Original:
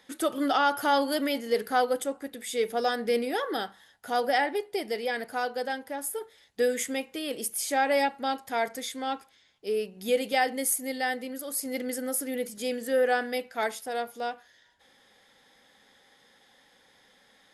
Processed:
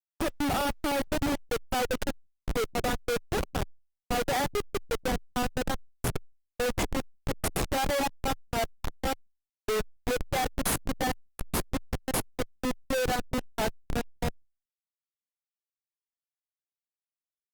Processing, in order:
reverb reduction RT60 1.5 s
comparator with hysteresis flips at −26.5 dBFS
level +4.5 dB
Opus 32 kbit/s 48,000 Hz

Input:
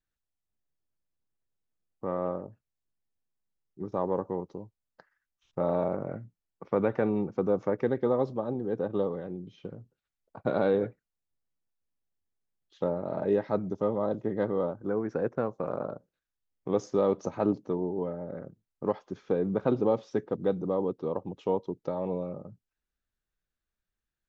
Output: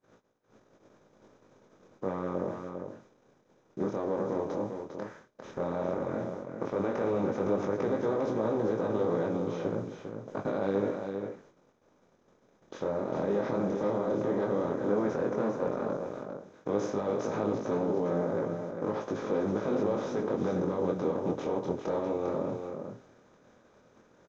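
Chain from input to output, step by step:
compressor on every frequency bin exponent 0.4
brickwall limiter −17.5 dBFS, peak gain reduction 9 dB
noise gate −47 dBFS, range −31 dB
chorus effect 0.11 Hz, delay 18 ms, depth 7.1 ms
on a send: single-tap delay 401 ms −6.5 dB

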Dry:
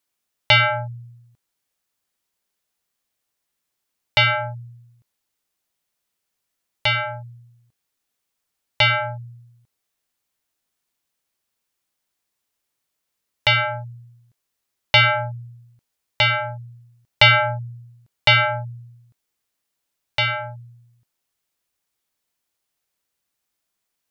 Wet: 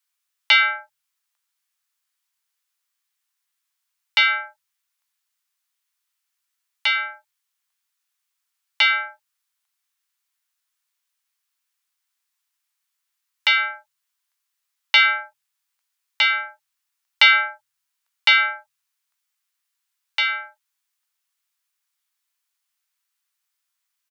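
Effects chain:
high-pass filter 1,000 Hz 24 dB per octave
double-tracking delay 16 ms −11 dB

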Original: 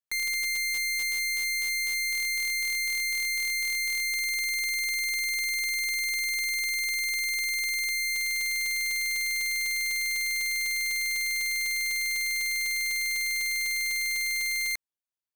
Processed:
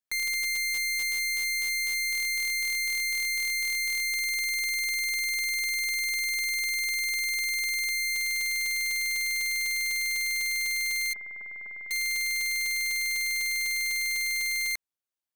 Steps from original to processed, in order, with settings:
0:11.13–0:11.91: elliptic low-pass filter 1,800 Hz, stop band 70 dB

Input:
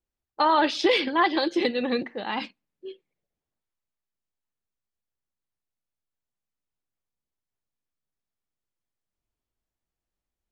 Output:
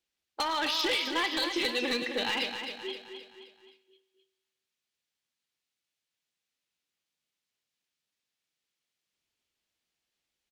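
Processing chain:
meter weighting curve D
downward compressor 8 to 1, threshold −26 dBFS, peak gain reduction 15.5 dB
gain into a clipping stage and back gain 24.5 dB
repeating echo 262 ms, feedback 47%, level −7.5 dB
on a send at −12 dB: convolution reverb RT60 1.3 s, pre-delay 3 ms

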